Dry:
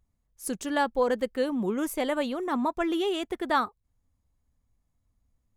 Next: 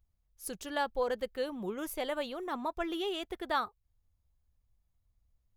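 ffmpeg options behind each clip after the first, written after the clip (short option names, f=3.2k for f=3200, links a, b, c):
-af "equalizer=f=125:t=o:w=1:g=-3,equalizer=f=250:t=o:w=1:g=-12,equalizer=f=500:t=o:w=1:g=-3,equalizer=f=1k:t=o:w=1:g=-5,equalizer=f=2k:t=o:w=1:g=-5,equalizer=f=8k:t=o:w=1:g=-9"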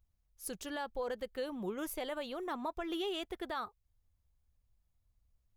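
-af "alimiter=level_in=3.5dB:limit=-24dB:level=0:latency=1:release=110,volume=-3.5dB,volume=-1dB"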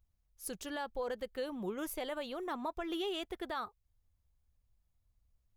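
-af anull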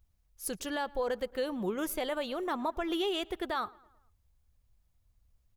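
-filter_complex "[0:a]asplit=2[a][b];[b]adelay=111,lowpass=f=3.3k:p=1,volume=-23.5dB,asplit=2[c][d];[d]adelay=111,lowpass=f=3.3k:p=1,volume=0.54,asplit=2[e][f];[f]adelay=111,lowpass=f=3.3k:p=1,volume=0.54,asplit=2[g][h];[h]adelay=111,lowpass=f=3.3k:p=1,volume=0.54[i];[a][c][e][g][i]amix=inputs=5:normalize=0,volume=5.5dB"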